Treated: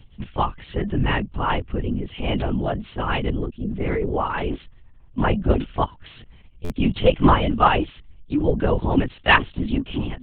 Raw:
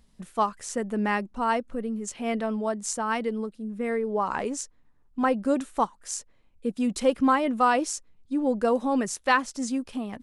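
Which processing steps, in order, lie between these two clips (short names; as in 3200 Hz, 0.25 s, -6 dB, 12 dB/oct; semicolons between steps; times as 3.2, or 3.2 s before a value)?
bin magnitudes rounded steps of 15 dB; synth low-pass 3100 Hz, resonance Q 3.7; low shelf 220 Hz +10.5 dB; LPC vocoder at 8 kHz whisper; in parallel at -2 dB: level quantiser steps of 18 dB; on the sum: stuck buffer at 6.64, samples 512, times 4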